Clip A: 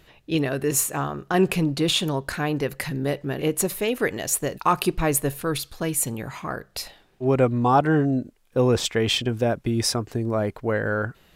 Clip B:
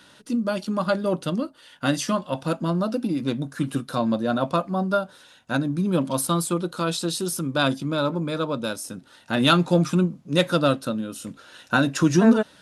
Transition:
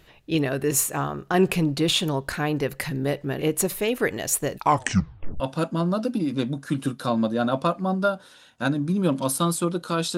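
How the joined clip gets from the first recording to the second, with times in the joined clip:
clip A
0:04.59: tape stop 0.81 s
0:05.40: continue with clip B from 0:02.29

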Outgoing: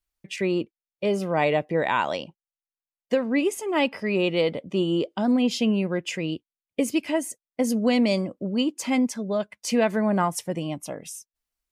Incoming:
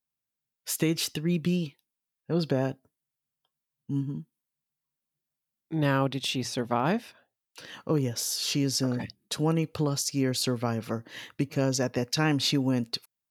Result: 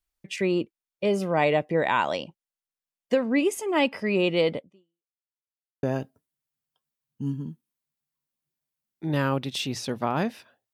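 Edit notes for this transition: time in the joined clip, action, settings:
outgoing
0:04.57–0:05.15: fade out exponential
0:05.15–0:05.83: silence
0:05.83: continue with incoming from 0:02.52

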